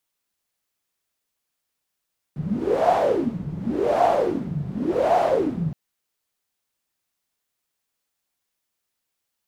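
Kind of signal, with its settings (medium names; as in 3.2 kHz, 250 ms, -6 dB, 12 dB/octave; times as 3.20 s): wind-like swept noise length 3.37 s, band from 150 Hz, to 710 Hz, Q 10, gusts 3, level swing 10 dB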